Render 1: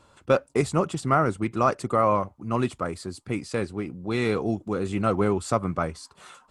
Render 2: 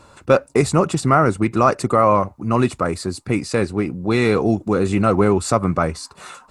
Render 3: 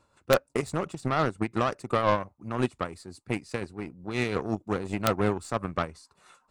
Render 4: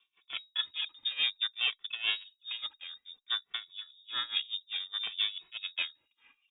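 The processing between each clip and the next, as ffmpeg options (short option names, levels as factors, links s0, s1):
-filter_complex "[0:a]bandreject=f=3200:w=7.3,asplit=2[s0][s1];[s1]alimiter=limit=0.119:level=0:latency=1:release=92,volume=1.12[s2];[s0][s2]amix=inputs=2:normalize=0,volume=1.5"
-af "tremolo=f=5.7:d=0.41,aeval=exprs='0.75*(cos(1*acos(clip(val(0)/0.75,-1,1)))-cos(1*PI/2))+0.0376*(cos(4*acos(clip(val(0)/0.75,-1,1)))-cos(4*PI/2))+0.075*(cos(7*acos(clip(val(0)/0.75,-1,1)))-cos(7*PI/2))':c=same,aeval=exprs='(mod(1.5*val(0)+1,2)-1)/1.5':c=same,volume=0.447"
-filter_complex "[0:a]tremolo=f=4.8:d=0.87,lowpass=f=3200:t=q:w=0.5098,lowpass=f=3200:t=q:w=0.6013,lowpass=f=3200:t=q:w=0.9,lowpass=f=3200:t=q:w=2.563,afreqshift=-3800,asplit=2[s0][s1];[s1]adelay=2.2,afreqshift=-0.59[s2];[s0][s2]amix=inputs=2:normalize=1"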